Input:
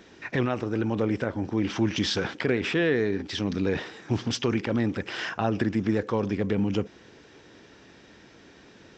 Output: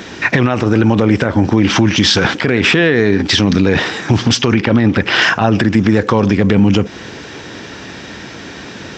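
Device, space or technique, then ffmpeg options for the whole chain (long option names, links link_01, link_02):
mastering chain: -filter_complex "[0:a]asettb=1/sr,asplit=3[link_01][link_02][link_03];[link_01]atrim=end=4.524[link_04];[link_02]atrim=start=4.52:end=5.22,asetpts=PTS-STARTPTS,afade=type=in:duration=0.004:curve=qsin,afade=type=out:start_time=0.696:duration=0.004:curve=qsin,lowpass=5000[link_05];[link_03]atrim=start=5.216[link_06];[link_04][link_05]acrossfade=duration=0.004:curve1=hsin:curve2=qsin[link_07];[link_07][link_06]acrossfade=duration=0.004:curve1=qsin:curve2=hsin,highpass=58,equalizer=frequency=410:width_type=o:width=1.2:gain=-4,acompressor=threshold=-31dB:ratio=2.5,alimiter=level_in=24dB:limit=-1dB:release=50:level=0:latency=1,volume=-1dB"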